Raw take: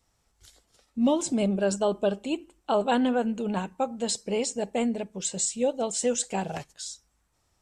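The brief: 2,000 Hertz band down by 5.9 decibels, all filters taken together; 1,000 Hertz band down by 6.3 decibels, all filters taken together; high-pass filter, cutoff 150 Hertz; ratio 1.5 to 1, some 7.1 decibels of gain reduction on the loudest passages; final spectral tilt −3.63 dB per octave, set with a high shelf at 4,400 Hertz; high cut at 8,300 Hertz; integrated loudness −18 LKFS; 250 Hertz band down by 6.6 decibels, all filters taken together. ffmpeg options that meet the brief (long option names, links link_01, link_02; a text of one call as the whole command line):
ffmpeg -i in.wav -af "highpass=150,lowpass=8300,equalizer=frequency=250:width_type=o:gain=-6.5,equalizer=frequency=1000:width_type=o:gain=-7.5,equalizer=frequency=2000:width_type=o:gain=-4.5,highshelf=frequency=4400:gain=-4,acompressor=threshold=-44dB:ratio=1.5,volume=20.5dB" out.wav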